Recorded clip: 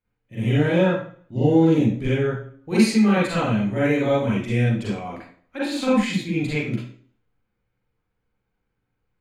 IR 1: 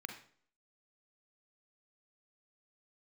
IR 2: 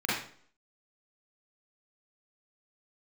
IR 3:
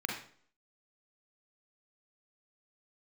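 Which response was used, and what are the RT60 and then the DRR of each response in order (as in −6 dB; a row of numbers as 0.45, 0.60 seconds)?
2; 0.50, 0.50, 0.50 seconds; 4.0, −8.5, −0.5 decibels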